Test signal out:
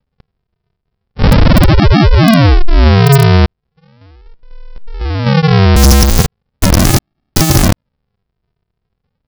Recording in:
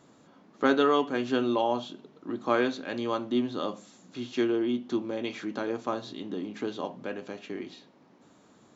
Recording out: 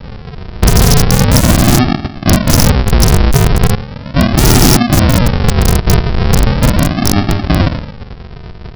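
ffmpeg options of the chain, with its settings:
ffmpeg -i in.wav -af "aresample=11025,acrusher=samples=31:mix=1:aa=0.000001:lfo=1:lforange=18.6:lforate=0.38,aresample=44100,aeval=exprs='(mod(21.1*val(0)+1,2)-1)/21.1':channel_layout=same,alimiter=level_in=32.5dB:limit=-1dB:release=50:level=0:latency=1,volume=-1dB" out.wav

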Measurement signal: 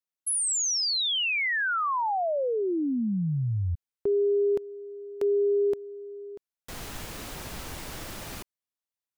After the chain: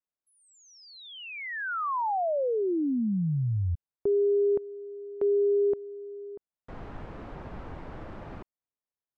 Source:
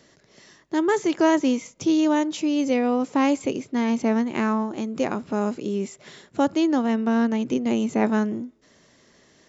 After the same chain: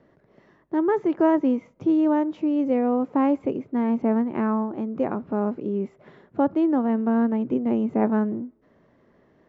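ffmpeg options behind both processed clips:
ffmpeg -i in.wav -af "lowpass=1200" out.wav

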